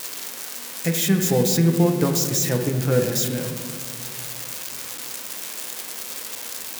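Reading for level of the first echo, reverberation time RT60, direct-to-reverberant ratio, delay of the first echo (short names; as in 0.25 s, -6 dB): none, 2.0 s, 4.0 dB, none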